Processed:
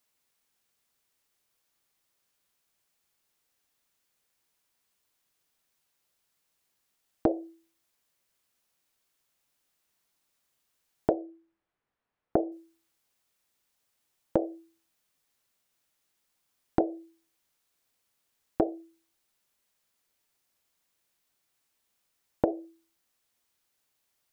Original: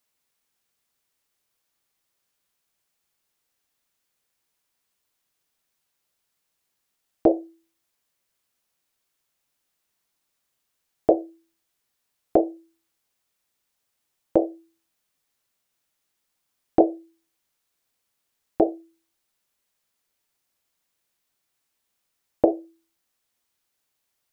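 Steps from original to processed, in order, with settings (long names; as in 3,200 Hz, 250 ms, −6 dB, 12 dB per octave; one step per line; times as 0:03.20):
downward compressor 12 to 1, threshold −21 dBFS, peak gain reduction 11.5 dB
0:11.13–0:12.52: low-pass filter 1,700 Hz 12 dB per octave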